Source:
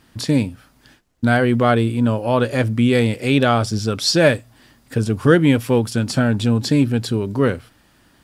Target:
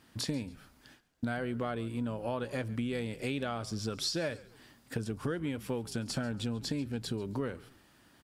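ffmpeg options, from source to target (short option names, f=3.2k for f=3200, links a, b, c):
-filter_complex "[0:a]lowshelf=f=76:g=-9,acompressor=threshold=-24dB:ratio=10,asplit=2[a][b];[b]asplit=3[c][d][e];[c]adelay=139,afreqshift=-72,volume=-20dB[f];[d]adelay=278,afreqshift=-144,volume=-29.1dB[g];[e]adelay=417,afreqshift=-216,volume=-38.2dB[h];[f][g][h]amix=inputs=3:normalize=0[i];[a][i]amix=inputs=2:normalize=0,volume=-7dB"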